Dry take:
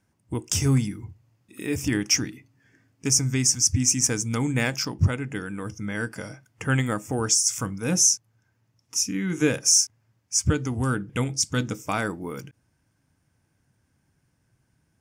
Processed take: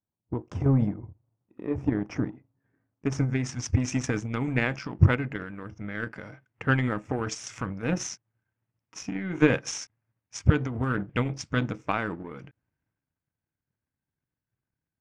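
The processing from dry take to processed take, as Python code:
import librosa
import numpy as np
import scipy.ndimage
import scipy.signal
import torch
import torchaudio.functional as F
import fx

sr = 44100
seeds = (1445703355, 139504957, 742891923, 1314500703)

y = fx.power_curve(x, sr, exponent=1.4)
y = fx.transient(y, sr, attack_db=6, sustain_db=10)
y = fx.filter_sweep_lowpass(y, sr, from_hz=930.0, to_hz=2300.0, start_s=2.51, end_s=3.69, q=0.99)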